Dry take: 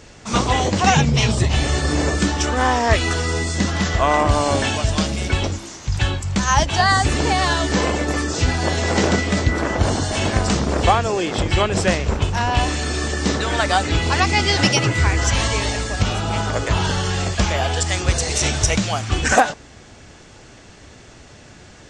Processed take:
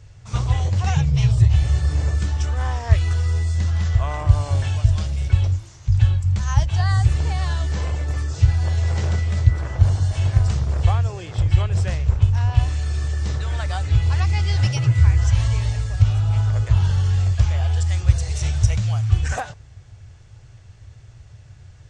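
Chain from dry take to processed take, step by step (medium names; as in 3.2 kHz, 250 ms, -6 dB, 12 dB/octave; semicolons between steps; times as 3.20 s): resonant low shelf 160 Hz +13 dB, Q 3; trim -13 dB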